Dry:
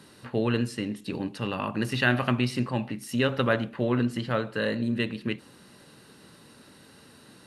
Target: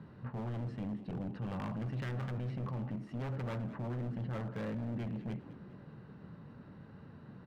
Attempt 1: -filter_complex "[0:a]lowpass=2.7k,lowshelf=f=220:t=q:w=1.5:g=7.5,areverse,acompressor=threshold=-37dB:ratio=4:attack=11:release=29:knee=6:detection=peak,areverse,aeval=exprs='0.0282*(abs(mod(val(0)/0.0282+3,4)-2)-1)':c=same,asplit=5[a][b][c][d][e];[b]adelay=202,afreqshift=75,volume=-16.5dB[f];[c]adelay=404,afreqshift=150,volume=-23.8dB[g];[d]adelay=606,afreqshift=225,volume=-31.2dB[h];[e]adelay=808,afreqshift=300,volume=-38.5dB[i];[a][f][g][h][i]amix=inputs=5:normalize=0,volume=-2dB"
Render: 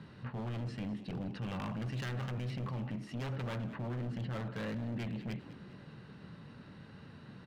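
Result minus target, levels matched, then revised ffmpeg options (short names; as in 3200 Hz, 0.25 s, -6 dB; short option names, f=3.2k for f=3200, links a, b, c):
2000 Hz band +3.5 dB
-filter_complex "[0:a]lowpass=1.3k,lowshelf=f=220:t=q:w=1.5:g=7.5,areverse,acompressor=threshold=-37dB:ratio=4:attack=11:release=29:knee=6:detection=peak,areverse,aeval=exprs='0.0282*(abs(mod(val(0)/0.0282+3,4)-2)-1)':c=same,asplit=5[a][b][c][d][e];[b]adelay=202,afreqshift=75,volume=-16.5dB[f];[c]adelay=404,afreqshift=150,volume=-23.8dB[g];[d]adelay=606,afreqshift=225,volume=-31.2dB[h];[e]adelay=808,afreqshift=300,volume=-38.5dB[i];[a][f][g][h][i]amix=inputs=5:normalize=0,volume=-2dB"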